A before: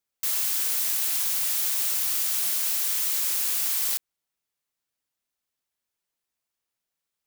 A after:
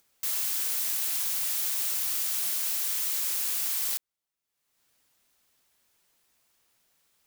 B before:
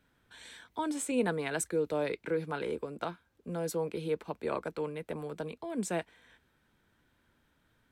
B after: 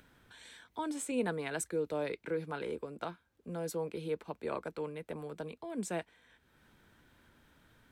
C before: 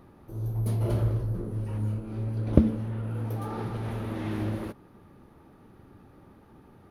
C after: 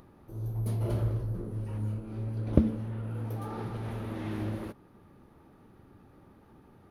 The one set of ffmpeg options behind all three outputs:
-af "acompressor=mode=upward:threshold=-50dB:ratio=2.5,volume=-3.5dB"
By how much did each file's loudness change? -3.5, -3.5, -3.5 LU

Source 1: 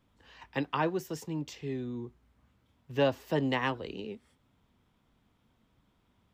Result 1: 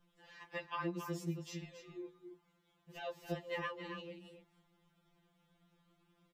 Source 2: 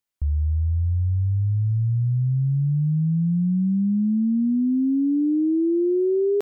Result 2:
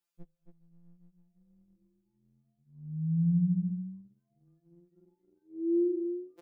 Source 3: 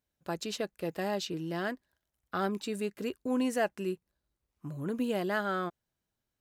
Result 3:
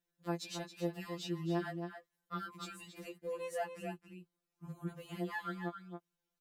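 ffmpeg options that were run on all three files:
-filter_complex "[0:a]acompressor=threshold=-38dB:ratio=2.5,asplit=2[a][b];[b]adelay=274.1,volume=-7dB,highshelf=f=4k:g=-6.17[c];[a][c]amix=inputs=2:normalize=0,afftfilt=real='re*2.83*eq(mod(b,8),0)':imag='im*2.83*eq(mod(b,8),0)':win_size=2048:overlap=0.75"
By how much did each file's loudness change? -10.5, -9.0, -8.0 LU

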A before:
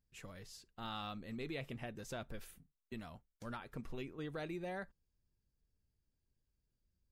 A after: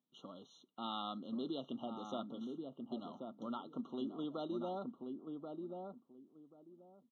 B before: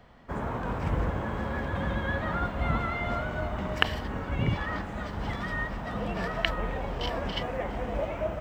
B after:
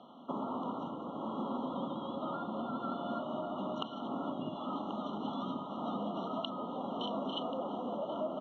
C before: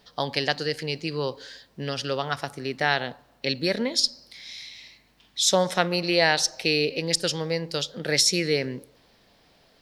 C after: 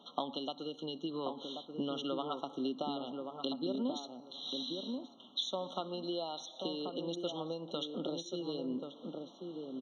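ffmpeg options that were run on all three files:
-filter_complex "[0:a]acompressor=threshold=-35dB:ratio=12,highpass=f=210:w=0.5412,highpass=f=210:w=1.3066,equalizer=f=260:t=q:w=4:g=6,equalizer=f=460:t=q:w=4:g=-6,equalizer=f=1.9k:t=q:w=4:g=-8,lowpass=f=4.4k:w=0.5412,lowpass=f=4.4k:w=1.3066,asplit=2[a][b];[b]adelay=1084,lowpass=f=810:p=1,volume=-3.5dB,asplit=2[c][d];[d]adelay=1084,lowpass=f=810:p=1,volume=0.21,asplit=2[e][f];[f]adelay=1084,lowpass=f=810:p=1,volume=0.21[g];[a][c][e][g]amix=inputs=4:normalize=0,afftfilt=real='re*eq(mod(floor(b*sr/1024/1400),2),0)':imag='im*eq(mod(floor(b*sr/1024/1400),2),0)':win_size=1024:overlap=0.75,volume=3.5dB"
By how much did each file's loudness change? +2.0, -7.0, -14.5 LU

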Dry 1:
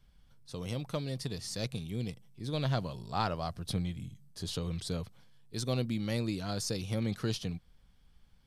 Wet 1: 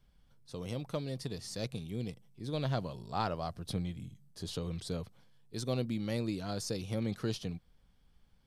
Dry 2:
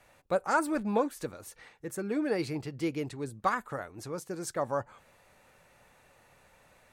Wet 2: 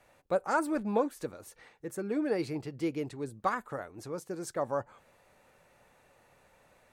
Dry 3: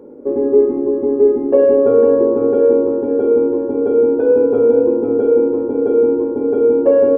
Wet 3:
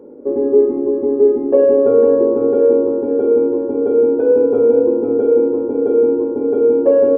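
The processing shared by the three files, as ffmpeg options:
-af "equalizer=f=430:t=o:w=2.5:g=4,volume=-4dB"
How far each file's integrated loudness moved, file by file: -2.0, -1.0, 0.0 LU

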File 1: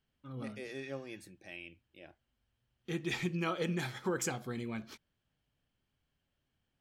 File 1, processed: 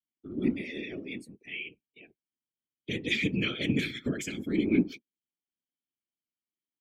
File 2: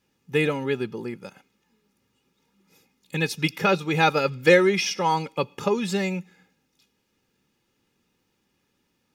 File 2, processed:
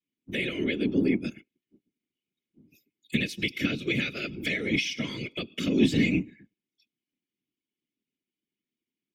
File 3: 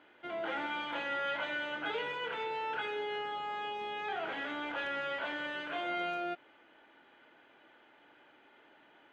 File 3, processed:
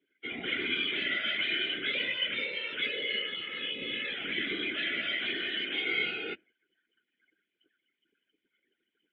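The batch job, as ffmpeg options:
-filter_complex "[0:a]aemphasis=mode=production:type=75fm,afftdn=nr=29:nf=-49,acompressor=threshold=-28dB:ratio=20,afreqshift=47,apsyclip=24.5dB,asplit=3[a][b][c];[a]bandpass=f=270:t=q:w=8,volume=0dB[d];[b]bandpass=f=2.29k:t=q:w=8,volume=-6dB[e];[c]bandpass=f=3.01k:t=q:w=8,volume=-9dB[f];[d][e][f]amix=inputs=3:normalize=0,afftfilt=real='hypot(re,im)*cos(2*PI*random(0))':imag='hypot(re,im)*sin(2*PI*random(1))':win_size=512:overlap=0.75"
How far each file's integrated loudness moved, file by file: +7.0, -4.5, +6.0 LU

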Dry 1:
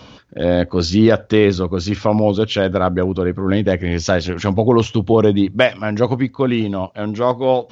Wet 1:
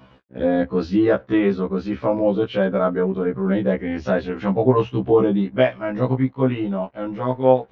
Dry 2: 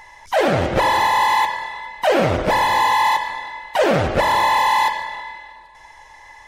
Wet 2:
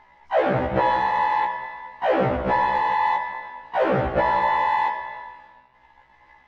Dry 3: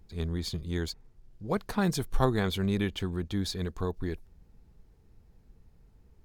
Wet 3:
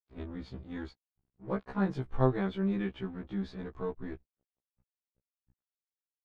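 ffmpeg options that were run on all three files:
-af "aeval=exprs='sgn(val(0))*max(abs(val(0))-0.00473,0)':c=same,lowpass=2k,afftfilt=real='re*1.73*eq(mod(b,3),0)':imag='im*1.73*eq(mod(b,3),0)':win_size=2048:overlap=0.75,volume=-1dB"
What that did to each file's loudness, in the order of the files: -3.5, -4.5, -3.5 LU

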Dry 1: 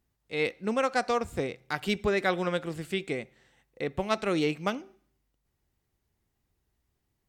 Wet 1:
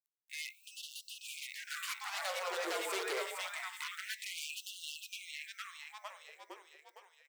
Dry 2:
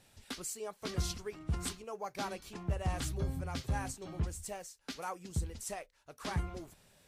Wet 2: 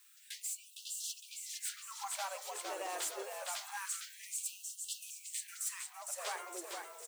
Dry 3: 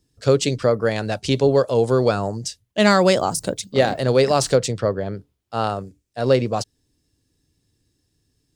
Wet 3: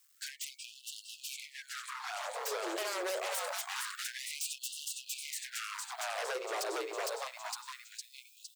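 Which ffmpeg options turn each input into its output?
-filter_complex "[0:a]acrusher=bits=10:mix=0:aa=0.000001,aexciter=amount=2.2:drive=3.2:freq=7k,lowshelf=f=240:g=-12,asplit=2[a][b];[b]asplit=7[c][d][e][f][g][h][i];[c]adelay=459,afreqshift=-63,volume=-5dB[j];[d]adelay=918,afreqshift=-126,volume=-10.2dB[k];[e]adelay=1377,afreqshift=-189,volume=-15.4dB[l];[f]adelay=1836,afreqshift=-252,volume=-20.6dB[m];[g]adelay=2295,afreqshift=-315,volume=-25.8dB[n];[h]adelay=2754,afreqshift=-378,volume=-31dB[o];[i]adelay=3213,afreqshift=-441,volume=-36.2dB[p];[j][k][l][m][n][o][p]amix=inputs=7:normalize=0[q];[a][q]amix=inputs=2:normalize=0,acompressor=threshold=-28dB:ratio=12,bandreject=f=75.44:t=h:w=4,bandreject=f=150.88:t=h:w=4,bandreject=f=226.32:t=h:w=4,bandreject=f=301.76:t=h:w=4,bandreject=f=377.2:t=h:w=4,bandreject=f=452.64:t=h:w=4,bandreject=f=528.08:t=h:w=4,bandreject=f=603.52:t=h:w=4,bandreject=f=678.96:t=h:w=4,bandreject=f=754.4:t=h:w=4,bandreject=f=829.84:t=h:w=4,bandreject=f=905.28:t=h:w=4,bandreject=f=980.72:t=h:w=4,bandreject=f=1.05616k:t=h:w=4,bandreject=f=1.1316k:t=h:w=4,bandreject=f=1.20704k:t=h:w=4,bandreject=f=1.28248k:t=h:w=4,bandreject=f=1.35792k:t=h:w=4,bandreject=f=1.43336k:t=h:w=4,bandreject=f=1.5088k:t=h:w=4,bandreject=f=1.58424k:t=h:w=4,bandreject=f=1.65968k:t=h:w=4,bandreject=f=1.73512k:t=h:w=4,bandreject=f=1.81056k:t=h:w=4,bandreject=f=1.886k:t=h:w=4,bandreject=f=1.96144k:t=h:w=4,bandreject=f=2.03688k:t=h:w=4,bandreject=f=2.11232k:t=h:w=4,bandreject=f=2.18776k:t=h:w=4,bandreject=f=2.2632k:t=h:w=4,bandreject=f=2.33864k:t=h:w=4,aeval=exprs='0.0266*(abs(mod(val(0)/0.0266+3,4)-2)-1)':c=same,dynaudnorm=f=340:g=11:m=3.5dB,afftfilt=real='re*gte(b*sr/1024,320*pow(2700/320,0.5+0.5*sin(2*PI*0.26*pts/sr)))':imag='im*gte(b*sr/1024,320*pow(2700/320,0.5+0.5*sin(2*PI*0.26*pts/sr)))':win_size=1024:overlap=0.75,volume=-2dB"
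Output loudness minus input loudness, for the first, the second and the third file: -10.5, -1.5, -18.5 LU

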